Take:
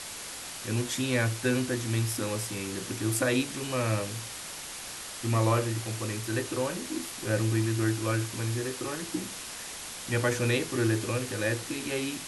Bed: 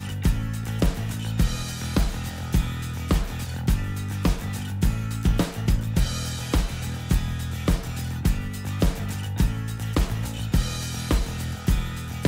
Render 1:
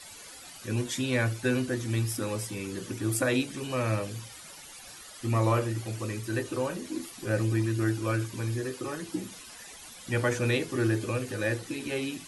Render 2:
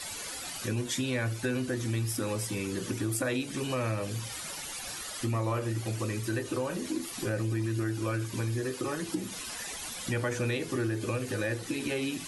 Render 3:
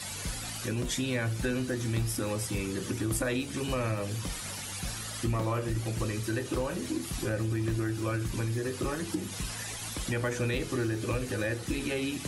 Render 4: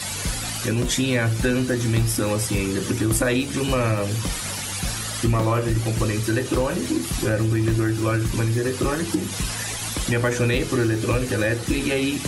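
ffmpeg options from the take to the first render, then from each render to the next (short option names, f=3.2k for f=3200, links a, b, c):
-af "afftdn=nr=13:nf=-41"
-filter_complex "[0:a]asplit=2[a][b];[b]alimiter=limit=-22dB:level=0:latency=1:release=89,volume=3dB[c];[a][c]amix=inputs=2:normalize=0,acompressor=threshold=-32dB:ratio=2.5"
-filter_complex "[1:a]volume=-16.5dB[a];[0:a][a]amix=inputs=2:normalize=0"
-af "volume=9.5dB"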